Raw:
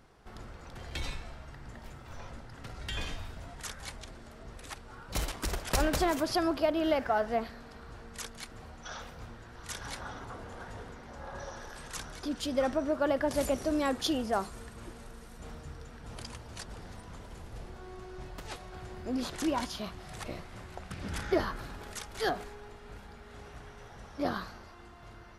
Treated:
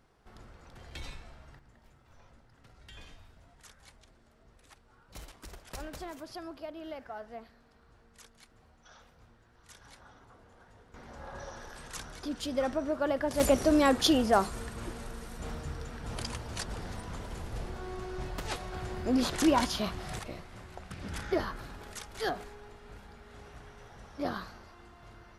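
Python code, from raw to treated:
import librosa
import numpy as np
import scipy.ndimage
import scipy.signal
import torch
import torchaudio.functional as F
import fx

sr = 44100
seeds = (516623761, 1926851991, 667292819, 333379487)

y = fx.gain(x, sr, db=fx.steps((0.0, -6.0), (1.59, -14.0), (10.94, -1.5), (13.4, 6.0), (20.19, -2.0)))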